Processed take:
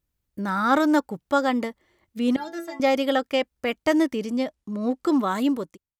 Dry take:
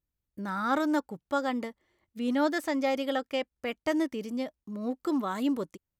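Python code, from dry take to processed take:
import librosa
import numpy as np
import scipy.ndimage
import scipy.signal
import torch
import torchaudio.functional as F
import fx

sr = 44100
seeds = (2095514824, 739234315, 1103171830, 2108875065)

y = fx.fade_out_tail(x, sr, length_s=0.65)
y = fx.stiff_resonator(y, sr, f0_hz=100.0, decay_s=0.51, stiffness=0.03, at=(2.36, 2.8))
y = fx.lowpass(y, sr, hz=11000.0, slope=12, at=(4.18, 5.21))
y = y * librosa.db_to_amplitude(7.5)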